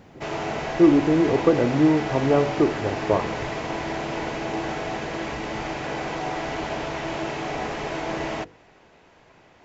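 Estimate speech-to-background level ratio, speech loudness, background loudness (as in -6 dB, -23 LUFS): 8.5 dB, -21.0 LUFS, -29.5 LUFS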